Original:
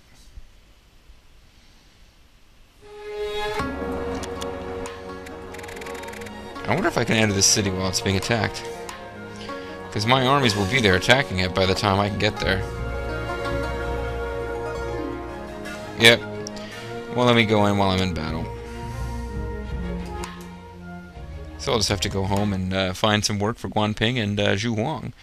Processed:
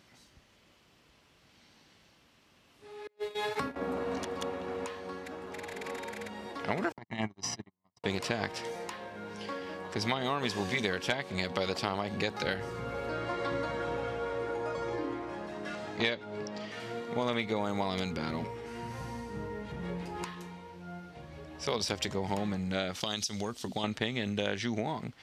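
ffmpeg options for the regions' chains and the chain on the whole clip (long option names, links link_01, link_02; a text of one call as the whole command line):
ffmpeg -i in.wav -filter_complex "[0:a]asettb=1/sr,asplit=3[link_01][link_02][link_03];[link_01]atrim=end=3.074[link_04];[link_02]atrim=start=3.07:end=3.76,asetpts=PTS-STARTPTS,afade=type=in:duration=0.004:curve=qsin,afade=type=out:start_time=0.686:duration=0.004:curve=qsin,agate=range=-36dB:threshold=-28dB:ratio=16:release=100:detection=peak,highshelf=frequency=8700:gain=6.5[link_05];[link_03]atrim=start=3.756[link_06];[link_04][link_05]acrossfade=duration=0.004:curve1=hsin:curve2=qsin[link_07];[link_07][link_06]acrossfade=duration=0.004:curve1=qsin:curve2=hsin,asettb=1/sr,asplit=3[link_08][link_09][link_10];[link_08]atrim=end=6.924[link_11];[link_09]atrim=start=6.92:end=8.04,asetpts=PTS-STARTPTS,afade=type=in:duration=0.004:curve=qsin,afade=type=out:start_time=1.116:duration=0.004:curve=qsin,agate=range=-58dB:threshold=-18dB:ratio=16:release=100:detection=peak,lowpass=frequency=1100:poles=1,aecho=1:1:1:0.82,atrim=end_sample=49392[link_12];[link_10]atrim=start=8.036[link_13];[link_11][link_12]acrossfade=duration=0.004:curve1=hsin:curve2=qsin[link_14];[link_14][link_13]acrossfade=duration=0.004:curve1=qsin:curve2=hsin,asettb=1/sr,asplit=3[link_15][link_16][link_17];[link_15]atrim=end=13.094[link_18];[link_16]atrim=start=13.09:end=16.8,asetpts=PTS-STARTPTS,afade=type=in:duration=0.004:curve=qsin,afade=type=out:start_time=3.706:duration=0.004:curve=qsin,lowpass=9400,acrossover=split=5800[link_19][link_20];[link_20]acompressor=threshold=-52dB:ratio=4:attack=1:release=60[link_21];[link_19][link_21]amix=inputs=2:normalize=0[link_22];[link_17]atrim=start=16.796[link_23];[link_18][link_22]acrossfade=duration=0.004:curve1=hsin:curve2=qsin[link_24];[link_24][link_23]acrossfade=duration=0.004:curve1=qsin:curve2=hsin,asettb=1/sr,asplit=3[link_25][link_26][link_27];[link_25]atrim=end=23.004[link_28];[link_26]atrim=start=23:end=23.84,asetpts=PTS-STARTPTS,afade=type=in:duration=0.004:curve=qsin,afade=type=out:start_time=0.836:duration=0.004:curve=qsin,agate=range=-33dB:threshold=-38dB:ratio=3:release=100:detection=peak,highshelf=frequency=2900:width_type=q:width=1.5:gain=10,acompressor=threshold=-23dB:ratio=4:attack=3.2:release=140:knee=1:detection=peak[link_29];[link_27]atrim=start=23.836[link_30];[link_28][link_29]acrossfade=duration=0.004:curve1=hsin:curve2=qsin[link_31];[link_31][link_30]acrossfade=duration=0.004:curve1=qsin:curve2=hsin,highpass=140,highshelf=frequency=7800:gain=-6,acompressor=threshold=-22dB:ratio=6,volume=-5.5dB" out.wav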